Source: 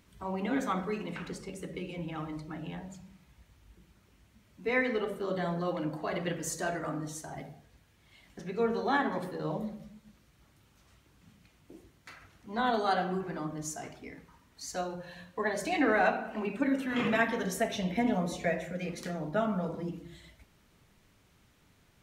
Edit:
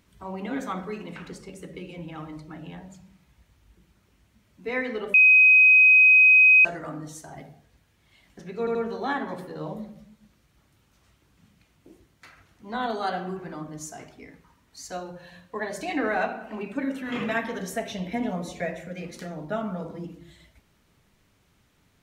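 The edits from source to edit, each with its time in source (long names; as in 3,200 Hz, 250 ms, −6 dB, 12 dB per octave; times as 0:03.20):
0:05.14–0:06.65: beep over 2,520 Hz −11.5 dBFS
0:08.59: stutter 0.08 s, 3 plays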